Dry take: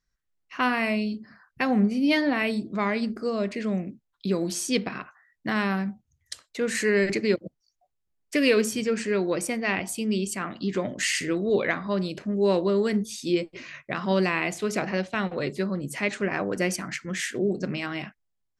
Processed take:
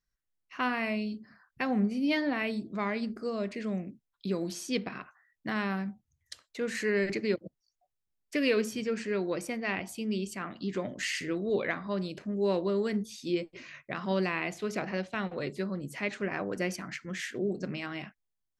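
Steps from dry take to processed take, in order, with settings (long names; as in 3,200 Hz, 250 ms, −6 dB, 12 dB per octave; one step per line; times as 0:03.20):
dynamic equaliser 8,900 Hz, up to −8 dB, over −50 dBFS, Q 1.3
level −6 dB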